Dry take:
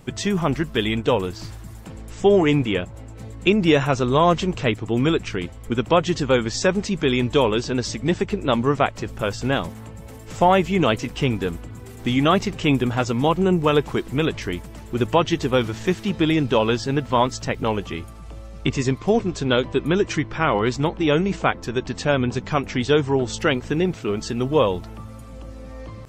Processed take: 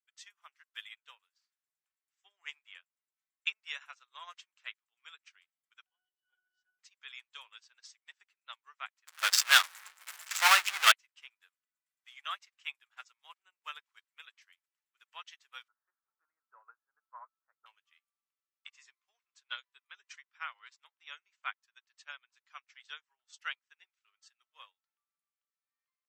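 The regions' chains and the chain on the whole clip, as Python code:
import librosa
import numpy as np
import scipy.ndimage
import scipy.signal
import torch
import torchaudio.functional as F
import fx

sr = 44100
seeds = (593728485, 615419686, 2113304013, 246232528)

y = fx.chain(x, sr, fx.octave_resonator(note='F#', decay_s=0.47),
    fx.env_flatten(amount_pct=100), at=(5.86, 6.79))
y = fx.chain(y, sr, fx.low_shelf(hz=340.0, db=8.5),
    fx.power_curve(exponent=0.35), at=(9.07, 10.92))
y = fx.chain(y, sr, fx.leveller(passes=1),
    fx.ellip_lowpass(hz=1400.0, order=4, stop_db=60), at=(15.68, 17.66))
y = scipy.signal.sosfilt(scipy.signal.butter(4, 1300.0, 'highpass', fs=sr, output='sos'), y)
y = fx.upward_expand(y, sr, threshold_db=-44.0, expansion=2.5)
y = y * librosa.db_to_amplitude(-1.5)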